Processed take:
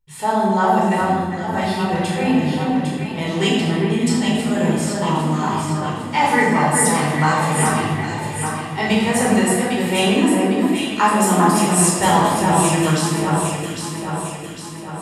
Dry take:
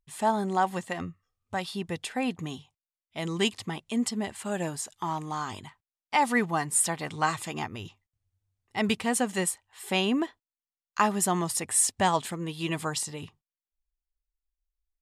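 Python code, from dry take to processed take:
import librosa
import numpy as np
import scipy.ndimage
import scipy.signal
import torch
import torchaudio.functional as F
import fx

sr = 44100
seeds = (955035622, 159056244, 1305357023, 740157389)

p1 = x + fx.echo_alternate(x, sr, ms=402, hz=1900.0, feedback_pct=72, wet_db=-2.5, dry=0)
y = fx.room_shoebox(p1, sr, seeds[0], volume_m3=890.0, walls='mixed', distance_m=4.5)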